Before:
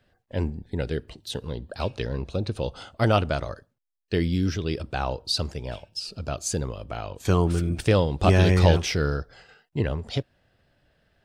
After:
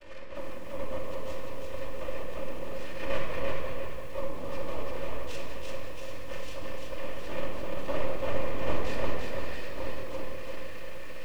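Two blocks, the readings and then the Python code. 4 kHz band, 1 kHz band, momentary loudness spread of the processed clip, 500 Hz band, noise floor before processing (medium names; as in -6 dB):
-13.0 dB, -8.0 dB, 8 LU, -7.0 dB, -73 dBFS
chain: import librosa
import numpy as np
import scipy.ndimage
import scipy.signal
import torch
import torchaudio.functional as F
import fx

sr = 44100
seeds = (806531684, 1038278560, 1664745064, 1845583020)

y = x + 0.5 * 10.0 ** (-24.0 / 20.0) * np.sign(x)
y = fx.vibrato(y, sr, rate_hz=0.46, depth_cents=42.0)
y = fx.noise_vocoder(y, sr, seeds[0], bands=4)
y = fx.vowel_filter(y, sr, vowel='e')
y = fx.rotary_switch(y, sr, hz=5.0, then_hz=1.2, switch_at_s=1.12)
y = y + 10.0 ** (-13.5 / 20.0) * np.pad(y, (int(185 * sr / 1000.0), 0))[:len(y)]
y = np.maximum(y, 0.0)
y = fx.room_shoebox(y, sr, seeds[1], volume_m3=2600.0, walls='mixed', distance_m=2.6)
y = fx.echo_crushed(y, sr, ms=342, feedback_pct=35, bits=9, wet_db=-3.0)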